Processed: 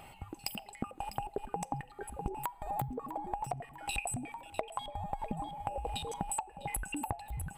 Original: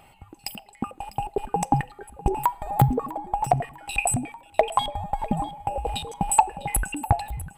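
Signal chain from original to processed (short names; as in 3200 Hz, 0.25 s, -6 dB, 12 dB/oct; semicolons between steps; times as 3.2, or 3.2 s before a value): compressor 16:1, threshold -34 dBFS, peak gain reduction 24 dB; gain +1 dB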